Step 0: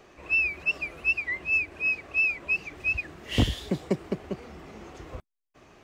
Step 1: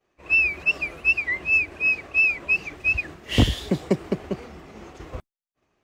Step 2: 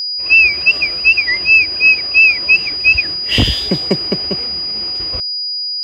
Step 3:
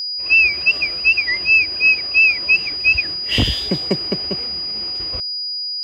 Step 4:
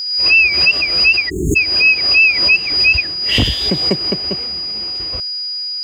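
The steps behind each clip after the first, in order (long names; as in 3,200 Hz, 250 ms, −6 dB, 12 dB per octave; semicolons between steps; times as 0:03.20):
downward expander −40 dBFS; level +5 dB
parametric band 3,000 Hz +7.5 dB 0.91 octaves; steady tone 4,900 Hz −24 dBFS; boost into a limiter +7 dB; level −1 dB
bit reduction 10 bits; level −4 dB
noise in a band 1,100–6,800 Hz −53 dBFS; time-frequency box erased 0:01.29–0:01.56, 440–6,400 Hz; background raised ahead of every attack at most 50 dB per second; level +2 dB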